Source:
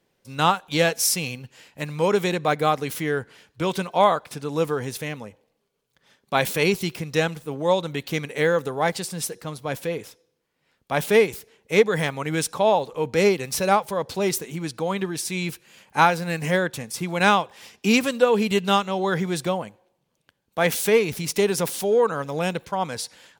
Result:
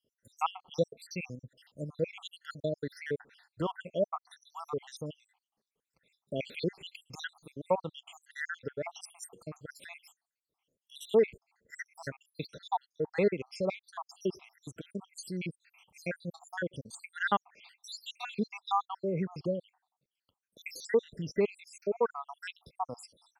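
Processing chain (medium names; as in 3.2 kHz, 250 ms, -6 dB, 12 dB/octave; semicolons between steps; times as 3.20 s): random holes in the spectrogram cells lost 80%; low-pass that closes with the level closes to 2.7 kHz, closed at -24.5 dBFS; trim -6.5 dB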